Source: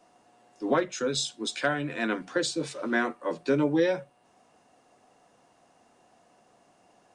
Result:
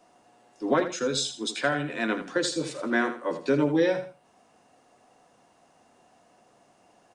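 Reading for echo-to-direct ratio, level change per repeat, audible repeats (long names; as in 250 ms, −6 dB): −10.0 dB, −11.5 dB, 2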